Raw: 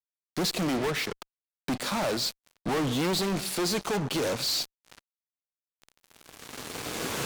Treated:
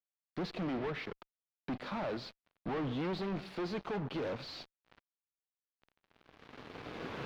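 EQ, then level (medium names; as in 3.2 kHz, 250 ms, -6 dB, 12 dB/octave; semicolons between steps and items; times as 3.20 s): distance through air 320 m; -7.5 dB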